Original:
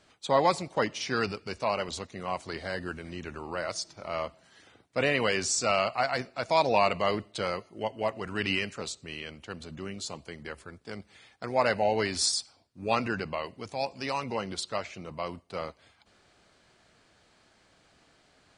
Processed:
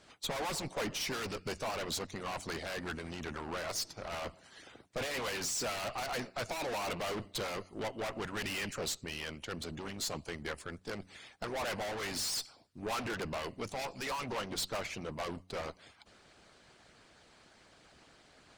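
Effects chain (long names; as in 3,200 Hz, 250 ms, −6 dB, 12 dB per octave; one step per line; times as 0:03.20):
tube saturation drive 40 dB, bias 0.6
hum removal 92.52 Hz, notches 3
harmonic and percussive parts rebalanced harmonic −10 dB
level +8.5 dB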